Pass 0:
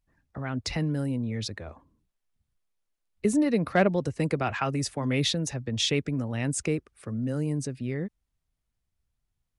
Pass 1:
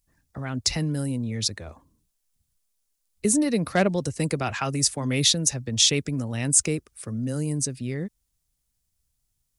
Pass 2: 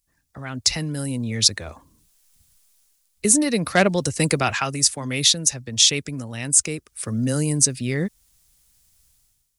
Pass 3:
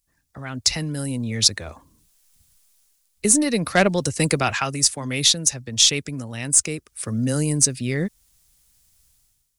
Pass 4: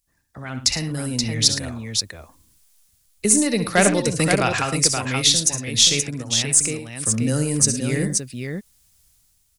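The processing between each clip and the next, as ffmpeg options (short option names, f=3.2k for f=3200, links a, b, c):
-af "bass=f=250:g=2,treble=f=4k:g=15"
-af "tiltshelf=f=970:g=-3.5,dynaudnorm=f=120:g=7:m=15dB,volume=-1dB"
-af "aeval=exprs='0.841*(cos(1*acos(clip(val(0)/0.841,-1,1)))-cos(1*PI/2))+0.0106*(cos(6*acos(clip(val(0)/0.841,-1,1)))-cos(6*PI/2))':c=same"
-af "aecho=1:1:61|70|109|527:0.237|0.251|0.168|0.531"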